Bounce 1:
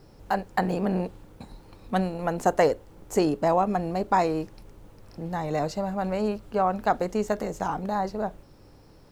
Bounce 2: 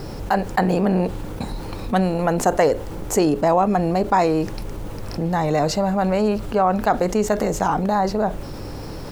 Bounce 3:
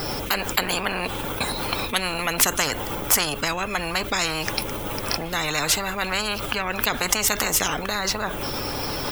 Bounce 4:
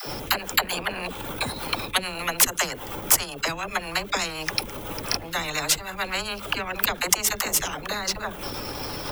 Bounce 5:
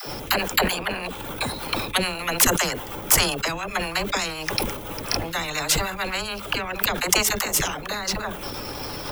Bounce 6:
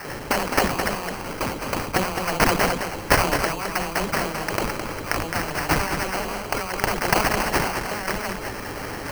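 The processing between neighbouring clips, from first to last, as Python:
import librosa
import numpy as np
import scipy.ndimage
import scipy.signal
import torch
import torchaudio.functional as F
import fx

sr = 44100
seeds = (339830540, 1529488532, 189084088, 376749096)

y1 = fx.env_flatten(x, sr, amount_pct=50)
y1 = F.gain(torch.from_numpy(y1), 3.0).numpy()
y2 = fx.bin_expand(y1, sr, power=1.5)
y2 = fx.peak_eq(y2, sr, hz=4500.0, db=-4.5, octaves=0.59)
y2 = fx.spectral_comp(y2, sr, ratio=10.0)
y2 = F.gain(torch.from_numpy(y2), 4.5).numpy()
y3 = fx.transient(y2, sr, attack_db=7, sustain_db=-11)
y3 = fx.dispersion(y3, sr, late='lows', ms=73.0, hz=380.0)
y3 = F.gain(torch.from_numpy(y3), -4.5).numpy()
y4 = fx.sustainer(y3, sr, db_per_s=66.0)
y5 = fx.rattle_buzz(y4, sr, strikes_db=-29.0, level_db=-14.0)
y5 = fx.sample_hold(y5, sr, seeds[0], rate_hz=3600.0, jitter_pct=0)
y5 = y5 + 10.0 ** (-6.5 / 20.0) * np.pad(y5, (int(213 * sr / 1000.0), 0))[:len(y5)]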